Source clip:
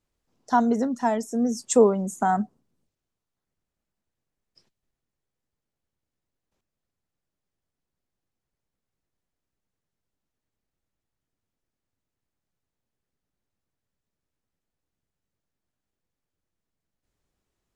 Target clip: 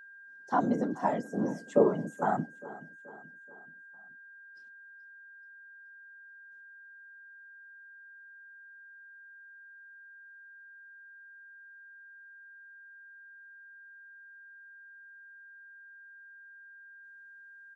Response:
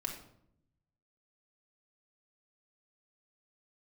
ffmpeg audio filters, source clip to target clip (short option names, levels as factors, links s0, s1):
-filter_complex "[0:a]acrossover=split=2700[s0][s1];[s1]acompressor=threshold=0.00251:ratio=4:attack=1:release=60[s2];[s0][s2]amix=inputs=2:normalize=0,afftfilt=real='hypot(re,im)*cos(2*PI*random(0))':imag='hypot(re,im)*sin(2*PI*random(1))':win_size=512:overlap=0.75,highpass=f=160:w=0.5412,highpass=f=160:w=1.3066,aeval=exprs='val(0)+0.00355*sin(2*PI*1600*n/s)':c=same,asplit=2[s3][s4];[s4]aecho=0:1:429|858|1287|1716:0.119|0.0582|0.0285|0.014[s5];[s3][s5]amix=inputs=2:normalize=0"